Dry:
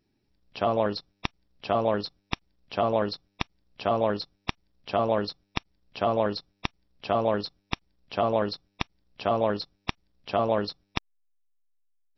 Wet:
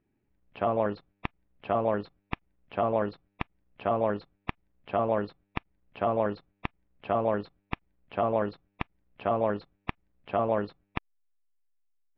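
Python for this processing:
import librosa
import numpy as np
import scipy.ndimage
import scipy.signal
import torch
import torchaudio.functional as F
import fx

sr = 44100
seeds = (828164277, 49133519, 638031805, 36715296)

y = scipy.signal.sosfilt(scipy.signal.butter(4, 2500.0, 'lowpass', fs=sr, output='sos'), x)
y = y * librosa.db_to_amplitude(-2.0)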